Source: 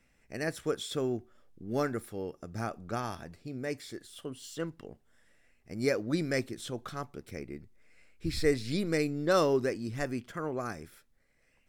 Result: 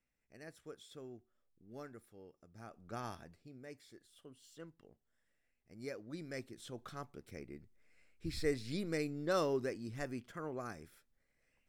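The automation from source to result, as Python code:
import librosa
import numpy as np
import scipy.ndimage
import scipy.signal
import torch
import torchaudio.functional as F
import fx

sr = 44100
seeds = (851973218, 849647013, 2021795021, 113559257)

y = fx.gain(x, sr, db=fx.line((2.57, -19.0), (3.07, -7.0), (3.6, -16.0), (6.13, -16.0), (6.9, -8.0)))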